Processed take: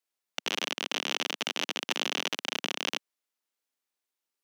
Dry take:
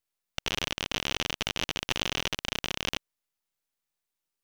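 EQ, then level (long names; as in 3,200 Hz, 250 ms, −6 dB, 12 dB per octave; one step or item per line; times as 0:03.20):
high-pass filter 230 Hz 24 dB per octave
high-shelf EQ 11,000 Hz −3.5 dB
0.0 dB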